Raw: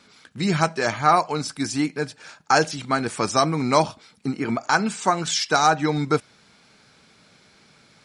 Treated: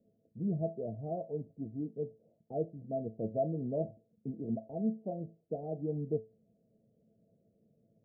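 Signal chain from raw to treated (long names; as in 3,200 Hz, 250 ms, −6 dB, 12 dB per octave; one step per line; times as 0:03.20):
Chebyshev low-pass with heavy ripple 690 Hz, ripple 6 dB
tuned comb filter 110 Hz, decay 0.28 s, harmonics all, mix 70%
level −2 dB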